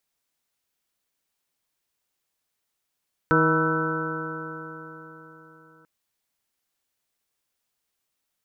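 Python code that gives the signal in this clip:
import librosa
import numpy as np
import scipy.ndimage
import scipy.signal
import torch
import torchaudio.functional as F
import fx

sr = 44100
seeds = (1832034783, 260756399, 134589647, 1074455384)

y = fx.additive_stiff(sr, length_s=2.54, hz=158.0, level_db=-23.0, upper_db=(1, 1, -11, -16.5, -3.5, -13, 2, 0.5), decay_s=4.02, stiffness=0.0015)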